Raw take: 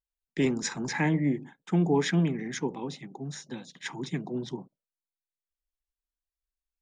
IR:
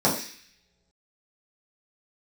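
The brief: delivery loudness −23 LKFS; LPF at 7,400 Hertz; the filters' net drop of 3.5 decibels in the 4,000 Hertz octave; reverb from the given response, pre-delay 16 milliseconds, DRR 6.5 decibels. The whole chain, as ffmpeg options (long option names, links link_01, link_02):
-filter_complex "[0:a]lowpass=7400,equalizer=frequency=4000:width_type=o:gain=-4,asplit=2[link_01][link_02];[1:a]atrim=start_sample=2205,adelay=16[link_03];[link_02][link_03]afir=irnorm=-1:irlink=0,volume=-22.5dB[link_04];[link_01][link_04]amix=inputs=2:normalize=0,volume=5dB"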